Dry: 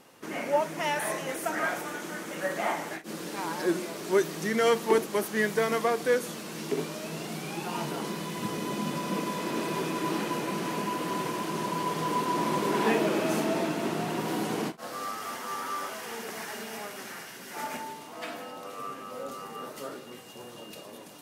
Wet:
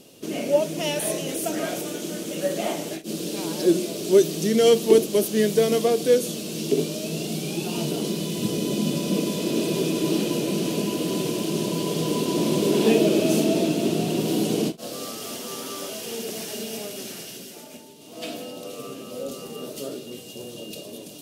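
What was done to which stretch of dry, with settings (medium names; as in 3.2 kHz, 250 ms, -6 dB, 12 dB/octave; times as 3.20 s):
17.35–18.24 s: dip -10.5 dB, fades 0.26 s
whole clip: high-order bell 1.3 kHz -16 dB; band-stop 520 Hz, Q 15; trim +8.5 dB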